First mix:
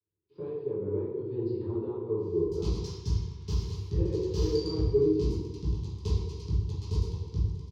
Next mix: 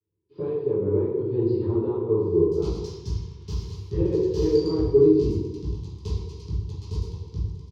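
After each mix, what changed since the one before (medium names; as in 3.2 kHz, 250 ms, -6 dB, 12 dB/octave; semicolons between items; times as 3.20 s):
speech: send +8.5 dB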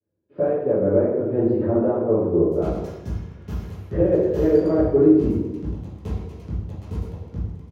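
master: remove FFT filter 140 Hz 0 dB, 240 Hz -12 dB, 420 Hz +2 dB, 620 Hz -28 dB, 970 Hz 0 dB, 1.5 kHz -18 dB, 4.8 kHz +14 dB, 12 kHz -9 dB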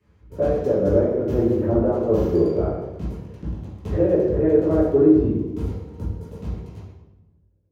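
background: entry -2.20 s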